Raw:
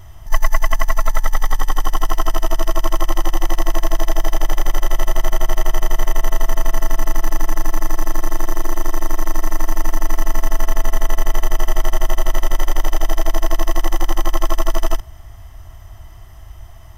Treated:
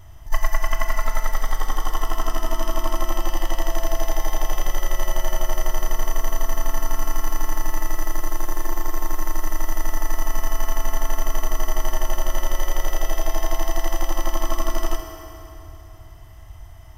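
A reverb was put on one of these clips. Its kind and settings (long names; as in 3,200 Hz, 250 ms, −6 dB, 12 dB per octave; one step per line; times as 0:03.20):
feedback delay network reverb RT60 3.2 s, high-frequency decay 0.8×, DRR 3.5 dB
level −5.5 dB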